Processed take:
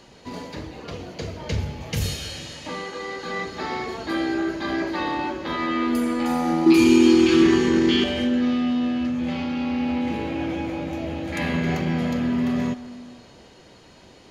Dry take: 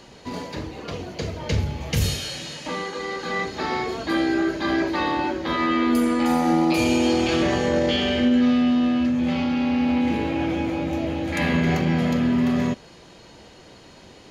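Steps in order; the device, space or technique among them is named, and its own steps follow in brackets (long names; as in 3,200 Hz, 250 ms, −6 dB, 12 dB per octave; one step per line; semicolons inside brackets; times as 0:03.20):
0:06.66–0:08.04: drawn EQ curve 130 Hz 0 dB, 380 Hz +13 dB, 570 Hz −18 dB, 1,000 Hz +4 dB
saturated reverb return (on a send at −10 dB: convolution reverb RT60 1.9 s, pre-delay 90 ms + soft clipping −21.5 dBFS, distortion −7 dB)
on the sum: level −3 dB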